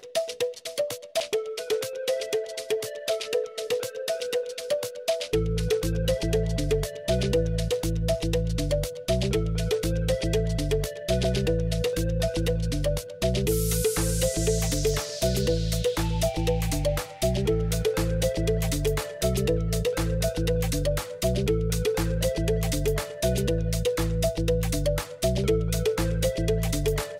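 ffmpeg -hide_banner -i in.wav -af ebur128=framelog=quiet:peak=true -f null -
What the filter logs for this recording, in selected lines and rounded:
Integrated loudness:
  I:         -26.7 LUFS
  Threshold: -36.7 LUFS
Loudness range:
  LRA:         3.5 LU
  Threshold: -46.6 LUFS
  LRA low:   -29.1 LUFS
  LRA high:  -25.6 LUFS
True peak:
  Peak:      -12.0 dBFS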